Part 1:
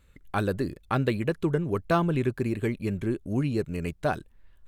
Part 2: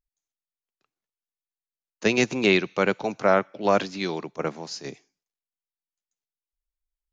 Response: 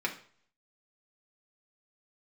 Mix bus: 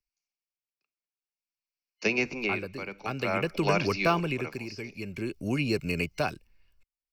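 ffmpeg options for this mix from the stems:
-filter_complex "[0:a]highshelf=f=5.9k:g=8,adelay=2150,volume=2.5dB[a];[1:a]volume=-5.5dB,asplit=2[b][c];[c]volume=-16.5dB[d];[2:a]atrim=start_sample=2205[e];[d][e]afir=irnorm=-1:irlink=0[f];[a][b][f]amix=inputs=3:normalize=0,superequalizer=12b=3.55:14b=3.55:16b=0.631,acrossover=split=94|270|710|1800[g][h][i][j][k];[g]acompressor=threshold=-46dB:ratio=4[l];[h]acompressor=threshold=-31dB:ratio=4[m];[i]acompressor=threshold=-28dB:ratio=4[n];[k]acompressor=threshold=-32dB:ratio=4[o];[l][m][n][j][o]amix=inputs=5:normalize=0,tremolo=f=0.51:d=0.75"

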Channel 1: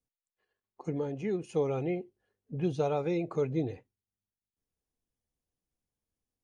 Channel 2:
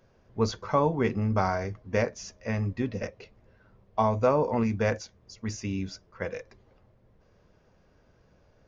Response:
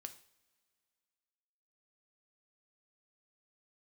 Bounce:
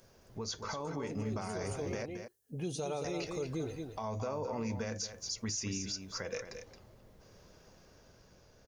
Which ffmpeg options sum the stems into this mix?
-filter_complex "[0:a]highshelf=f=6.1k:g=7.5,volume=-3dB,asplit=2[a][b];[b]volume=-8.5dB[c];[1:a]acompressor=threshold=-31dB:ratio=6,alimiter=level_in=8dB:limit=-24dB:level=0:latency=1:release=183,volume=-8dB,dynaudnorm=f=220:g=9:m=3dB,volume=0.5dB,asplit=3[d][e][f];[d]atrim=end=2.06,asetpts=PTS-STARTPTS,afade=t=out:st=2.056:d=0.004:c=hsin[g];[e]atrim=start=2.06:end=3.04,asetpts=PTS-STARTPTS,volume=0[h];[f]atrim=start=3.04,asetpts=PTS-STARTPTS,afade=t=in:d=0.004:c=hsin[i];[g][h][i]concat=n=3:v=0:a=1,asplit=3[j][k][l];[k]volume=-9dB[m];[l]apad=whole_len=283699[n];[a][n]sidechaincompress=threshold=-44dB:ratio=8:attack=16:release=348[o];[c][m]amix=inputs=2:normalize=0,aecho=0:1:222:1[p];[o][j][p]amix=inputs=3:normalize=0,bass=f=250:g=-2,treble=f=4k:g=14,alimiter=level_in=3.5dB:limit=-24dB:level=0:latency=1:release=72,volume=-3.5dB"

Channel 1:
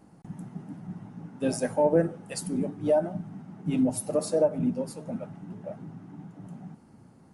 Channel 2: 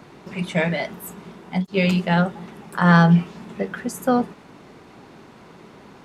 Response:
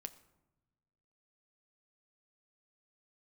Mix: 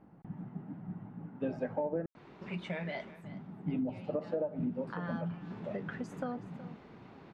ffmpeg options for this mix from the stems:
-filter_complex "[0:a]lowpass=2.5k,volume=-3.5dB,asplit=3[a][b][c];[a]atrim=end=2.06,asetpts=PTS-STARTPTS,afade=t=out:st=2.056:d=0.004:c=hsin[d];[b]atrim=start=2.06:end=3.24,asetpts=PTS-STARTPTS,volume=0[e];[c]atrim=start=3.24,asetpts=PTS-STARTPTS,afade=t=in:d=0.004:c=hsin[f];[d][e][f]concat=n=3:v=0:a=1[g];[1:a]acompressor=threshold=-25dB:ratio=6,adelay=2150,volume=3.5dB,afade=t=out:st=3.01:d=0.22:silence=0.223872,afade=t=in:st=4.61:d=0.71:silence=0.237137,asplit=2[h][i];[i]volume=-16.5dB,aecho=0:1:371:1[j];[g][h][j]amix=inputs=3:normalize=0,lowpass=3.6k,acompressor=threshold=-30dB:ratio=12"

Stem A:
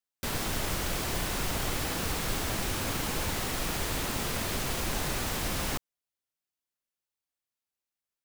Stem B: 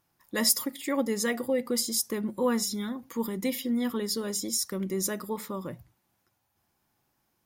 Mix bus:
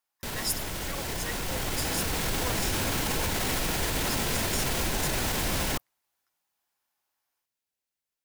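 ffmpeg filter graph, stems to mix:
-filter_complex "[0:a]bandreject=f=1.2k:w=9.8,alimiter=level_in=3dB:limit=-24dB:level=0:latency=1:release=36,volume=-3dB,dynaudnorm=f=260:g=13:m=6dB,volume=2dB[a];[1:a]highpass=760,dynaudnorm=f=180:g=3:m=3.5dB,volume=-10dB[b];[a][b]amix=inputs=2:normalize=0"

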